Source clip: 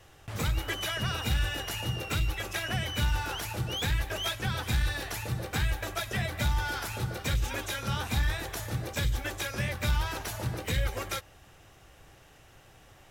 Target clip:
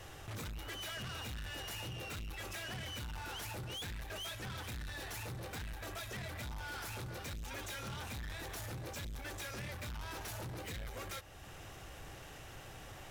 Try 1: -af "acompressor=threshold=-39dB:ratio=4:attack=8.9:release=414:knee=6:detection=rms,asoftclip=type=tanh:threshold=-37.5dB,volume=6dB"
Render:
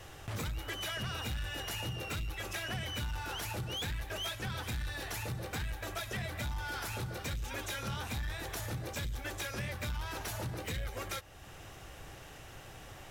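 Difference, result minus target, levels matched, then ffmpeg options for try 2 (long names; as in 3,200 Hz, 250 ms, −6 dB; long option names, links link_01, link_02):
soft clipping: distortion −9 dB
-af "acompressor=threshold=-39dB:ratio=4:attack=8.9:release=414:knee=6:detection=rms,asoftclip=type=tanh:threshold=-47dB,volume=6dB"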